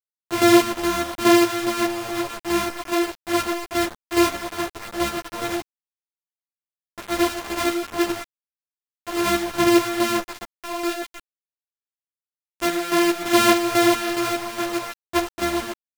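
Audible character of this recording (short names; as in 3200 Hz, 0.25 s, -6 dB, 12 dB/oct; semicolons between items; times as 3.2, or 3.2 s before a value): a buzz of ramps at a fixed pitch in blocks of 128 samples; chopped level 2.4 Hz, depth 60%, duty 45%; a quantiser's noise floor 6-bit, dither none; a shimmering, thickened sound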